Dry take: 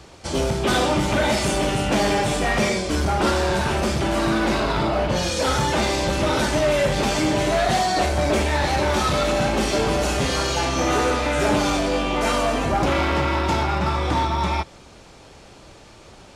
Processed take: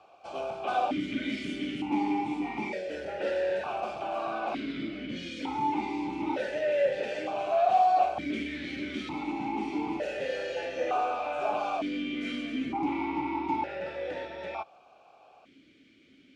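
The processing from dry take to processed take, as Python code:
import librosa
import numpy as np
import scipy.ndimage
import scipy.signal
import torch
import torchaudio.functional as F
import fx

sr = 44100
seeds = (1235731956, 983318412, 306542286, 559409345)

y = fx.small_body(x, sr, hz=(850.0, 1500.0), ring_ms=45, db=6)
y = fx.vowel_held(y, sr, hz=1.1)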